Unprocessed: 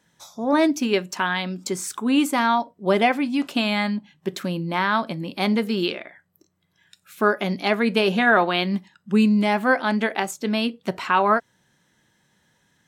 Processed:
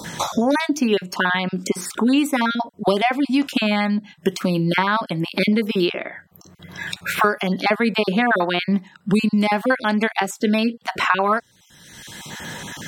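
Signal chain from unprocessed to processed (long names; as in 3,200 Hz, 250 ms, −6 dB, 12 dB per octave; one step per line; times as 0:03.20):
time-frequency cells dropped at random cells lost 22%
multiband upward and downward compressor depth 100%
level +2.5 dB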